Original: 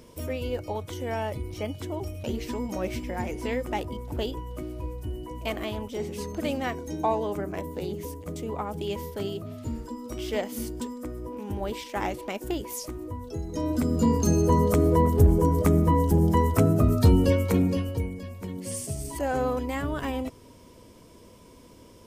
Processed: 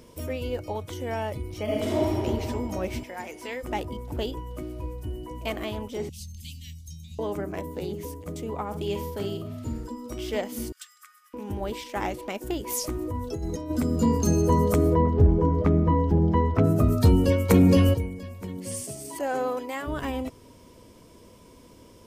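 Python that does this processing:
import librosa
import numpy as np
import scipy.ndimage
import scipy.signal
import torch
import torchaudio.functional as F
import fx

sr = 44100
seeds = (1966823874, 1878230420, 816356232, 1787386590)

y = fx.reverb_throw(x, sr, start_s=1.63, length_s=0.44, rt60_s=2.8, drr_db=-8.5)
y = fx.highpass(y, sr, hz=800.0, slope=6, at=(3.03, 3.63))
y = fx.cheby2_bandstop(y, sr, low_hz=370.0, high_hz=1300.0, order=4, stop_db=60, at=(6.09, 7.19))
y = fx.room_flutter(y, sr, wall_m=8.4, rt60_s=0.33, at=(8.66, 9.89))
y = fx.brickwall_highpass(y, sr, low_hz=1100.0, at=(10.72, 11.34))
y = fx.over_compress(y, sr, threshold_db=-34.0, ratio=-1.0, at=(12.66, 13.69), fade=0.02)
y = fx.air_absorb(y, sr, metres=250.0, at=(14.93, 16.63), fade=0.02)
y = fx.env_flatten(y, sr, amount_pct=70, at=(17.49, 17.93), fade=0.02)
y = fx.highpass(y, sr, hz=fx.line((18.83, 190.0), (19.86, 390.0)), slope=12, at=(18.83, 19.86), fade=0.02)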